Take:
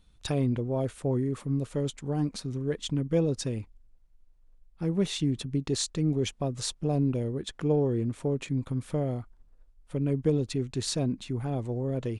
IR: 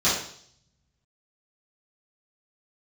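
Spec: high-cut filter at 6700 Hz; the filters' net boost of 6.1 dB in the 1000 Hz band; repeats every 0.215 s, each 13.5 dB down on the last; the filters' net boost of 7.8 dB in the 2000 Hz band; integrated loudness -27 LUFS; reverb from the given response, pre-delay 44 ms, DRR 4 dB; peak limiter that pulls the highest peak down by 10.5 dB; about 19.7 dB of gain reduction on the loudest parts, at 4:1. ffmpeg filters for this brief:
-filter_complex "[0:a]lowpass=6.7k,equalizer=f=1k:t=o:g=7.5,equalizer=f=2k:t=o:g=8,acompressor=threshold=-44dB:ratio=4,alimiter=level_in=13.5dB:limit=-24dB:level=0:latency=1,volume=-13.5dB,aecho=1:1:215|430:0.211|0.0444,asplit=2[a][b];[1:a]atrim=start_sample=2205,adelay=44[c];[b][c]afir=irnorm=-1:irlink=0,volume=-20dB[d];[a][d]amix=inputs=2:normalize=0,volume=18dB"

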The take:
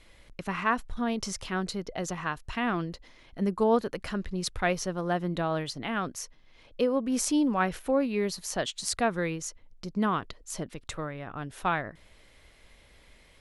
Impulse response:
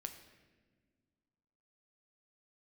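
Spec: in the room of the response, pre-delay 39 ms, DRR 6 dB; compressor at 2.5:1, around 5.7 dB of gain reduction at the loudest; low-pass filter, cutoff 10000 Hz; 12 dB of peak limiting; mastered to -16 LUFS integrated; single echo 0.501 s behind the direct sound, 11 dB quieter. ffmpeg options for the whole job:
-filter_complex "[0:a]lowpass=10k,acompressor=threshold=-28dB:ratio=2.5,alimiter=limit=-23.5dB:level=0:latency=1,aecho=1:1:501:0.282,asplit=2[a][b];[1:a]atrim=start_sample=2205,adelay=39[c];[b][c]afir=irnorm=-1:irlink=0,volume=-3dB[d];[a][d]amix=inputs=2:normalize=0,volume=17.5dB"

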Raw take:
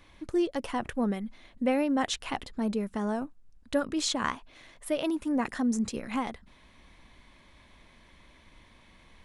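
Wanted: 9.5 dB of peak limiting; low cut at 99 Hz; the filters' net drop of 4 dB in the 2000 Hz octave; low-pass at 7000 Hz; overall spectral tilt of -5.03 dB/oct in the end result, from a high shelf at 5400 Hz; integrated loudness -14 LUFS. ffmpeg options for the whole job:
-af "highpass=99,lowpass=7k,equalizer=f=2k:t=o:g=-4,highshelf=f=5.4k:g=-8,volume=21dB,alimiter=limit=-4dB:level=0:latency=1"

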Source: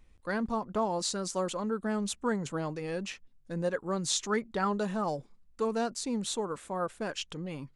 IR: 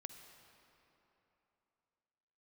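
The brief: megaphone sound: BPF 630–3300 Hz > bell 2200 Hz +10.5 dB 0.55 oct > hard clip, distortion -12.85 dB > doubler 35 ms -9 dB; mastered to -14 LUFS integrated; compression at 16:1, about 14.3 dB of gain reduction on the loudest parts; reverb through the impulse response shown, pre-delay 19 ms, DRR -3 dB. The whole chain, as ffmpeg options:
-filter_complex "[0:a]acompressor=threshold=-39dB:ratio=16,asplit=2[a][b];[1:a]atrim=start_sample=2205,adelay=19[c];[b][c]afir=irnorm=-1:irlink=0,volume=7.5dB[d];[a][d]amix=inputs=2:normalize=0,highpass=630,lowpass=3.3k,equalizer=f=2.2k:t=o:w=0.55:g=10.5,asoftclip=type=hard:threshold=-37.5dB,asplit=2[e][f];[f]adelay=35,volume=-9dB[g];[e][g]amix=inputs=2:normalize=0,volume=30dB"

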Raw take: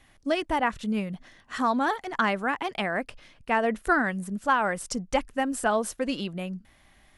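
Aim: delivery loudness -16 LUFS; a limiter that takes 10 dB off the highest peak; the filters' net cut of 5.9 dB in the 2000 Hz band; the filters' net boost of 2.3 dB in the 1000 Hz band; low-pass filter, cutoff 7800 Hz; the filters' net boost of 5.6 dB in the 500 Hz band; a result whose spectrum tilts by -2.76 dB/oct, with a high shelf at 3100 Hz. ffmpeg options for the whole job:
-af "lowpass=7.8k,equalizer=f=500:t=o:g=7,equalizer=f=1k:t=o:g=3,equalizer=f=2k:t=o:g=-8.5,highshelf=f=3.1k:g=-6,volume=12.5dB,alimiter=limit=-5dB:level=0:latency=1"

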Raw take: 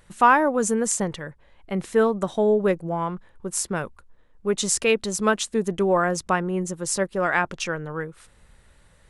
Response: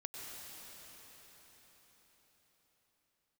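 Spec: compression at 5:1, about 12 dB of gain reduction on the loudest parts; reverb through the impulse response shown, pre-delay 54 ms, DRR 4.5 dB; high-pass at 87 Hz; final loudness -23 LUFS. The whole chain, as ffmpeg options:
-filter_complex "[0:a]highpass=87,acompressor=threshold=-24dB:ratio=5,asplit=2[a][b];[1:a]atrim=start_sample=2205,adelay=54[c];[b][c]afir=irnorm=-1:irlink=0,volume=-3.5dB[d];[a][d]amix=inputs=2:normalize=0,volume=5dB"

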